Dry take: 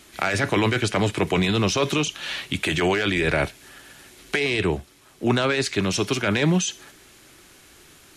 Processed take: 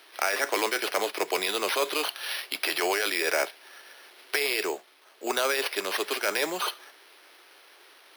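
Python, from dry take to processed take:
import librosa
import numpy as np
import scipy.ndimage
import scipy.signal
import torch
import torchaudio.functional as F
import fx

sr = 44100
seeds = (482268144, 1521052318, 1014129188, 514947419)

y = np.repeat(x[::6], 6)[:len(x)]
y = scipy.signal.sosfilt(scipy.signal.butter(4, 420.0, 'highpass', fs=sr, output='sos'), y)
y = F.gain(torch.from_numpy(y), -2.5).numpy()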